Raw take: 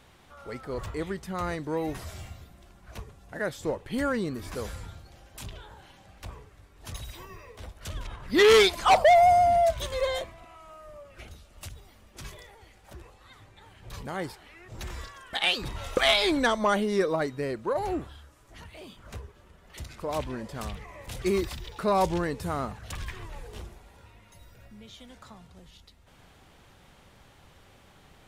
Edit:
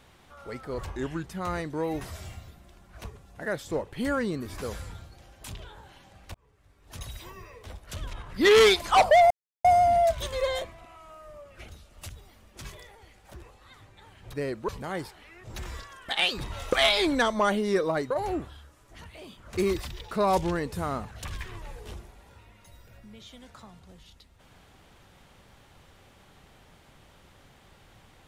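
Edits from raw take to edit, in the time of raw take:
0:00.85–0:01.19: play speed 84%
0:06.28–0:07.03: fade in
0:09.24: splice in silence 0.34 s
0:17.35–0:17.70: move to 0:13.93
0:19.17–0:21.25: remove

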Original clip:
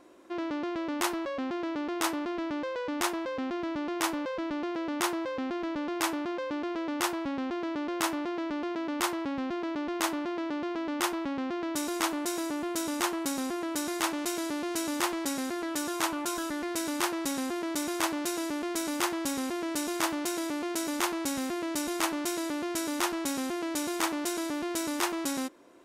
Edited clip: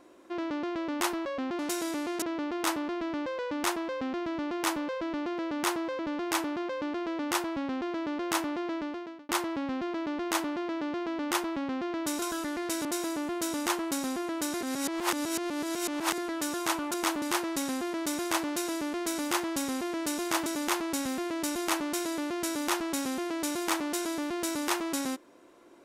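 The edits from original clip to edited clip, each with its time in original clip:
0:05.36–0:05.68: remove
0:08.44–0:08.98: fade out
0:11.91–0:12.19: swap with 0:16.28–0:16.91
0:13.95–0:15.52: reverse
0:20.15–0:20.78: move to 0:01.59

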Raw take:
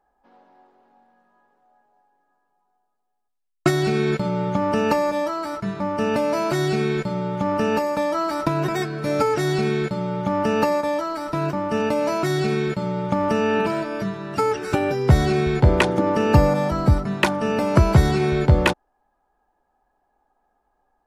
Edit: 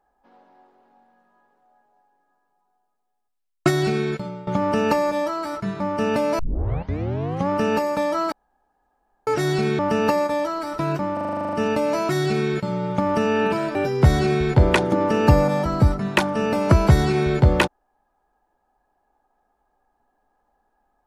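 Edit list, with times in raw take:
0:03.84–0:04.47: fade out, to −17 dB
0:06.39: tape start 1.10 s
0:08.32–0:09.27: fill with room tone
0:09.79–0:10.33: remove
0:11.67: stutter 0.04 s, 11 plays
0:13.89–0:14.81: remove

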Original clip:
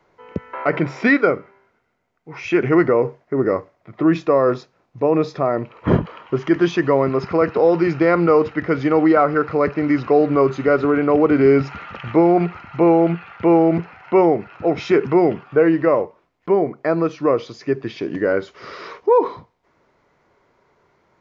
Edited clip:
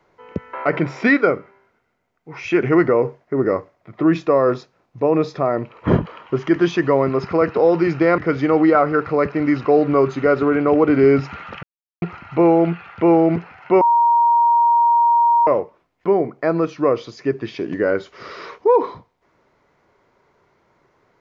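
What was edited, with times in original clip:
0:08.18–0:08.60: remove
0:12.05–0:12.44: silence
0:14.23–0:15.89: beep over 940 Hz −11 dBFS

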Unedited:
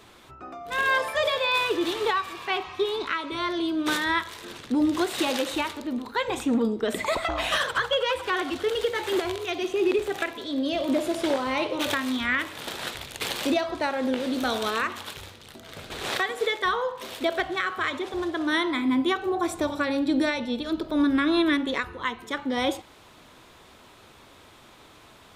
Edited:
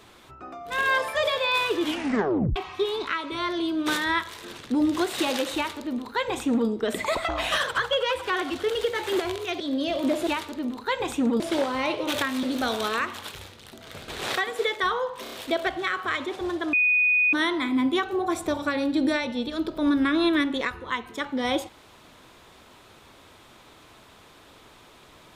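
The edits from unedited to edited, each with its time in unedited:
0:01.81: tape stop 0.75 s
0:05.55–0:06.68: duplicate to 0:11.12
0:09.60–0:10.45: remove
0:12.15–0:14.25: remove
0:17.05: stutter 0.03 s, 4 plays
0:18.46: insert tone 2,480 Hz −17.5 dBFS 0.60 s

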